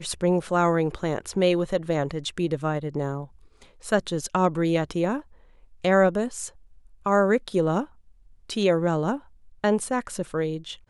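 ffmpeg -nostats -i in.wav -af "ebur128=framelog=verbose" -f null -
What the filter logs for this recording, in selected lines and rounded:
Integrated loudness:
  I:         -25.0 LUFS
  Threshold: -35.7 LUFS
Loudness range:
  LRA:         2.5 LU
  Threshold: -45.9 LUFS
  LRA low:   -27.3 LUFS
  LRA high:  -24.8 LUFS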